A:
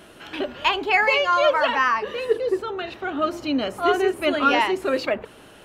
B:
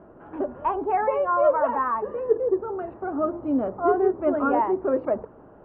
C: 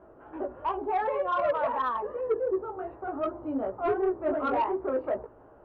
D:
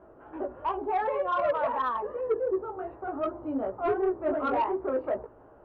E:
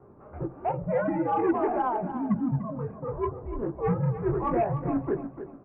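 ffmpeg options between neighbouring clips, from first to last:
-af "lowpass=f=1100:w=0.5412,lowpass=f=1100:w=1.3066"
-af "equalizer=f=190:t=o:w=0.92:g=-10,flanger=delay=15.5:depth=3.9:speed=2.7,asoftclip=type=tanh:threshold=0.106"
-af anull
-filter_complex "[0:a]asplit=2[s0][s1];[s1]aecho=0:1:295|590|885:0.282|0.0789|0.0221[s2];[s0][s2]amix=inputs=2:normalize=0,highpass=f=320:t=q:w=0.5412,highpass=f=320:t=q:w=1.307,lowpass=f=2600:t=q:w=0.5176,lowpass=f=2600:t=q:w=0.7071,lowpass=f=2600:t=q:w=1.932,afreqshift=-240,volume=1.19"

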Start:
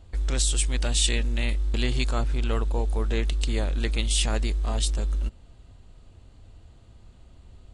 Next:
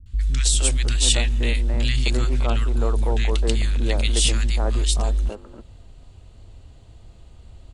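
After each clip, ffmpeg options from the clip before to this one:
-filter_complex "[0:a]acrossover=split=230|1400[s0][s1][s2];[s2]adelay=60[s3];[s1]adelay=320[s4];[s0][s4][s3]amix=inputs=3:normalize=0,volume=1.78"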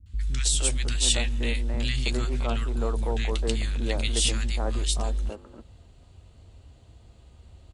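-filter_complex "[0:a]highpass=41,asplit=2[s0][s1];[s1]adelay=13,volume=0.224[s2];[s0][s2]amix=inputs=2:normalize=0,volume=0.631"

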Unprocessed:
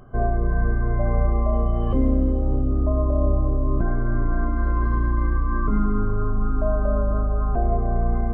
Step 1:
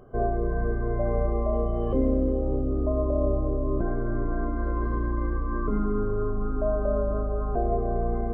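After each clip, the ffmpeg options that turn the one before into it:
-af "equalizer=f=450:t=o:w=1.2:g=11,volume=0.447"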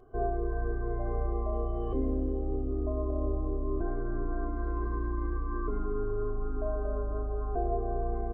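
-af "aecho=1:1:2.7:0.82,volume=0.355"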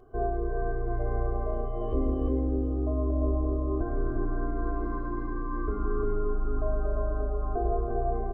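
-af "aecho=1:1:351:0.708,volume=1.19"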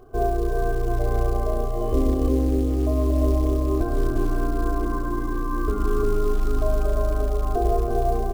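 -af "acrusher=bits=7:mode=log:mix=0:aa=0.000001,volume=2.11"

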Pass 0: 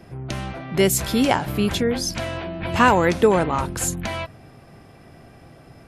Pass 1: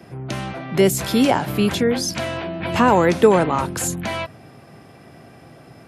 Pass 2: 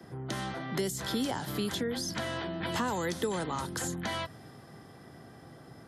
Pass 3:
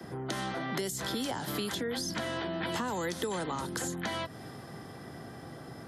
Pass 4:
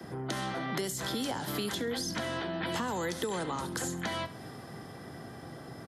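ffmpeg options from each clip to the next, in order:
-filter_complex "[0:a]highpass=110,acrossover=split=390|900[s0][s1][s2];[s2]alimiter=limit=0.119:level=0:latency=1:release=20[s3];[s0][s1][s3]amix=inputs=3:normalize=0,volume=1.41"
-filter_complex "[0:a]superequalizer=8b=0.708:12b=0.355,acrossover=split=84|200|3200|7500[s0][s1][s2][s3][s4];[s0]acompressor=threshold=0.00501:ratio=4[s5];[s1]acompressor=threshold=0.0141:ratio=4[s6];[s2]acompressor=threshold=0.0447:ratio=4[s7];[s3]acompressor=threshold=0.01:ratio=4[s8];[s4]acompressor=threshold=0.00562:ratio=4[s9];[s5][s6][s7][s8][s9]amix=inputs=5:normalize=0,adynamicequalizer=threshold=0.00631:dfrequency=1700:dqfactor=0.7:tfrequency=1700:tqfactor=0.7:attack=5:release=100:ratio=0.375:range=2:mode=boostabove:tftype=highshelf,volume=0.501"
-filter_complex "[0:a]acrossover=split=180|500[s0][s1][s2];[s0]acompressor=threshold=0.002:ratio=4[s3];[s1]acompressor=threshold=0.00631:ratio=4[s4];[s2]acompressor=threshold=0.00891:ratio=4[s5];[s3][s4][s5]amix=inputs=3:normalize=0,volume=2"
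-af "aecho=1:1:68|136|204:0.168|0.0655|0.0255"

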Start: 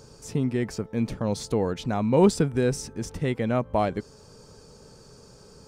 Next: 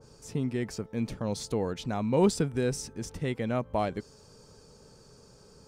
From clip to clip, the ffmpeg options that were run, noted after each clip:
-af "adynamicequalizer=threshold=0.00708:dfrequency=2300:dqfactor=0.7:tfrequency=2300:tqfactor=0.7:attack=5:release=100:ratio=0.375:range=1.5:mode=boostabove:tftype=highshelf,volume=0.562"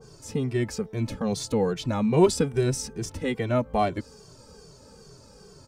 -filter_complex "[0:a]asplit=2[s0][s1];[s1]adelay=2.1,afreqshift=-2.4[s2];[s0][s2]amix=inputs=2:normalize=1,volume=2.51"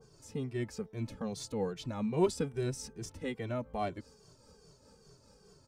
-af "tremolo=f=4.9:d=0.37,volume=0.355"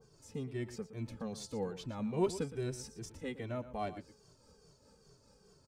-af "aecho=1:1:117:0.2,volume=0.668"

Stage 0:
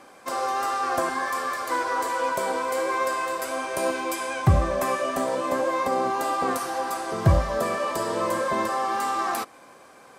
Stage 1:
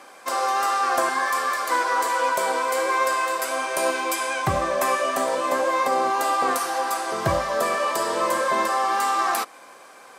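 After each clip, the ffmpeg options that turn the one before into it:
-af "highpass=f=640:p=1,volume=1.88"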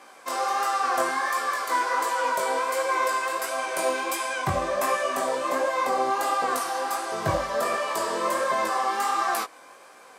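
-af "flanger=delay=16.5:depth=6.9:speed=1.4"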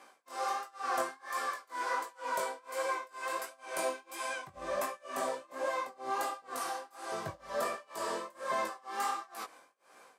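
-af "tremolo=f=2.1:d=0.97,volume=0.447"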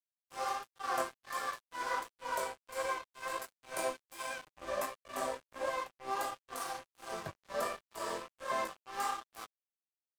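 -af "aeval=exprs='sgn(val(0))*max(abs(val(0))-0.00596,0)':c=same"

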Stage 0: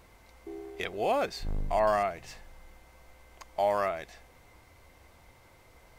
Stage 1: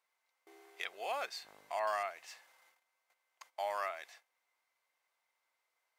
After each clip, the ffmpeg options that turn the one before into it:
-af "agate=range=0.141:threshold=0.00316:ratio=16:detection=peak,highpass=960,volume=0.631"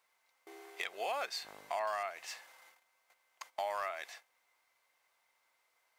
-af "acompressor=threshold=0.00794:ratio=3,asoftclip=type=hard:threshold=0.02,volume=2.24"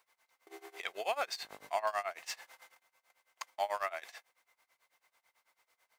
-filter_complex "[0:a]acrossover=split=6200[s0][s1];[s1]acrusher=bits=2:mode=log:mix=0:aa=0.000001[s2];[s0][s2]amix=inputs=2:normalize=0,tremolo=f=9.1:d=0.92,volume=1.88"

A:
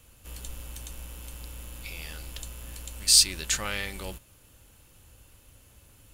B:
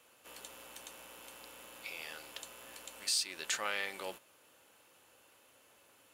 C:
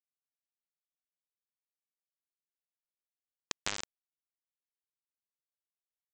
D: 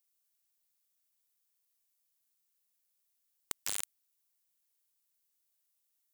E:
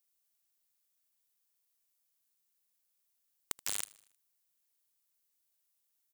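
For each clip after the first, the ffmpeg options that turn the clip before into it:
-af "highpass=470,highshelf=f=3500:g=-10,alimiter=limit=0.075:level=0:latency=1:release=311,volume=1.12"
-af "aresample=16000,acrusher=bits=3:mix=0:aa=0.000001,aresample=44100,acompressor=threshold=0.00891:ratio=6,volume=3.16"
-af "aeval=exprs='(tanh(20*val(0)+0.65)-tanh(0.65))/20':c=same,crystalizer=i=3.5:c=0,aeval=exprs='(mod(14.1*val(0)+1,2)-1)/14.1':c=same,volume=1.88"
-af "aecho=1:1:78|156|234|312:0.0794|0.0429|0.0232|0.0125"

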